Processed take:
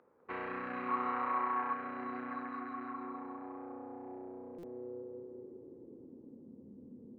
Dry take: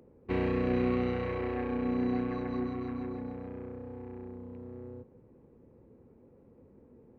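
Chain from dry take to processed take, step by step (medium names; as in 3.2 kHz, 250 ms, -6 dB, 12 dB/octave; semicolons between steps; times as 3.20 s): feedback echo behind a low-pass 202 ms, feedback 60%, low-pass 1.8 kHz, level -3.5 dB; band-pass sweep 1.3 kHz -> 230 Hz, 2.76–6.67 s; in parallel at -2 dB: compression, threshold -52 dBFS, peak gain reduction 13 dB; 0.88–1.73 s: on the sum: peaking EQ 970 Hz +12.5 dB 0.54 oct; buffer glitch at 4.58 s, samples 256, times 8; trim +2 dB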